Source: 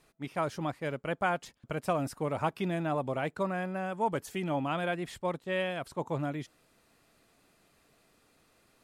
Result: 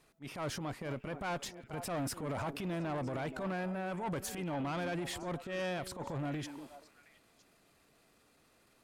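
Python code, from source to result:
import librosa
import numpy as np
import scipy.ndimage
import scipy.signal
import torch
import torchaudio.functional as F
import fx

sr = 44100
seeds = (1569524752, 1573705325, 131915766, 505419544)

y = fx.transient(x, sr, attack_db=-10, sustain_db=8)
y = fx.echo_stepped(y, sr, ms=240, hz=290.0, octaves=1.4, feedback_pct=70, wet_db=-9.0)
y = fx.tube_stage(y, sr, drive_db=31.0, bias=0.25)
y = F.gain(torch.from_numpy(y), -1.0).numpy()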